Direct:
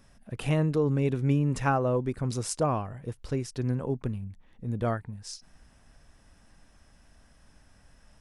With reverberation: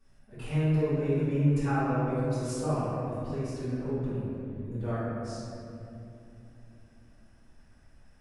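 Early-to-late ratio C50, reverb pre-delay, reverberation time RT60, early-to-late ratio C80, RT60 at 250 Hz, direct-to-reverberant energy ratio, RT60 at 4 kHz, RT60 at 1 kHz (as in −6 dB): −4.5 dB, 3 ms, 2.9 s, −2.0 dB, 4.4 s, −15.0 dB, 1.6 s, 2.4 s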